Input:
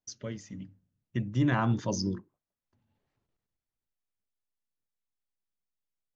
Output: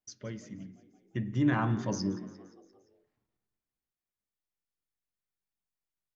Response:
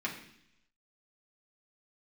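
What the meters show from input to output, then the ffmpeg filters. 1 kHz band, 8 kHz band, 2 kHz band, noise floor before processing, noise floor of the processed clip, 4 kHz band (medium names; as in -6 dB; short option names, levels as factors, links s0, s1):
-1.5 dB, no reading, -1.0 dB, under -85 dBFS, under -85 dBFS, -4.0 dB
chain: -filter_complex "[0:a]asplit=6[s0][s1][s2][s3][s4][s5];[s1]adelay=174,afreqshift=48,volume=0.112[s6];[s2]adelay=348,afreqshift=96,volume=0.0661[s7];[s3]adelay=522,afreqshift=144,volume=0.0389[s8];[s4]adelay=696,afreqshift=192,volume=0.0232[s9];[s5]adelay=870,afreqshift=240,volume=0.0136[s10];[s0][s6][s7][s8][s9][s10]amix=inputs=6:normalize=0,asplit=2[s11][s12];[1:a]atrim=start_sample=2205,lowpass=3000[s13];[s12][s13]afir=irnorm=-1:irlink=0,volume=0.335[s14];[s11][s14]amix=inputs=2:normalize=0,volume=0.631"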